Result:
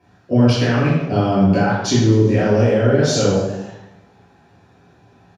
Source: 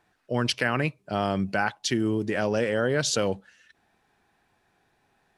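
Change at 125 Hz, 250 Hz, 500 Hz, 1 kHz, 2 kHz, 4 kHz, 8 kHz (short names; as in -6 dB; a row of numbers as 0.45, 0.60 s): +16.0, +12.5, +10.0, +7.0, +3.0, +5.0, +5.5 dB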